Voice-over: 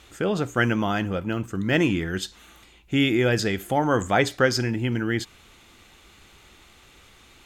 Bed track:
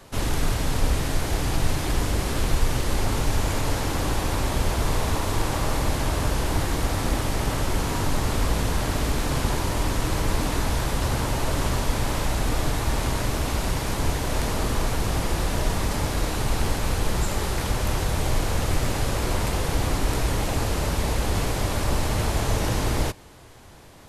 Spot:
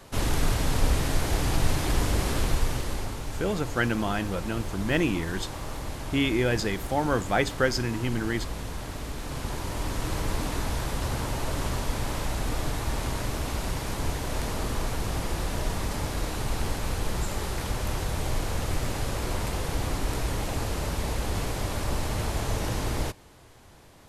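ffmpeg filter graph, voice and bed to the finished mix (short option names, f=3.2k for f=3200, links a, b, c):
-filter_complex "[0:a]adelay=3200,volume=-4dB[a];[1:a]volume=5dB,afade=t=out:st=2.28:d=0.9:silence=0.316228,afade=t=in:st=9.16:d=0.95:silence=0.501187[b];[a][b]amix=inputs=2:normalize=0"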